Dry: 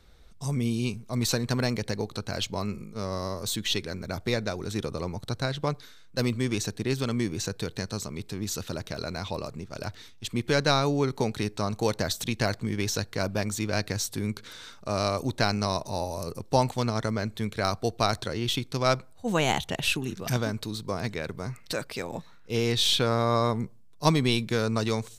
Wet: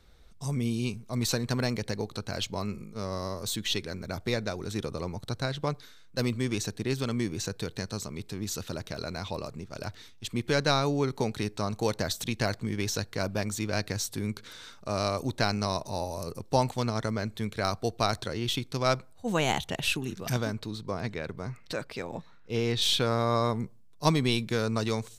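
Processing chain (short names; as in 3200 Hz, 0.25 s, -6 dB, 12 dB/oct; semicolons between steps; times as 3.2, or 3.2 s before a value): 20.53–22.82 high shelf 6600 Hz -11.5 dB; gain -2 dB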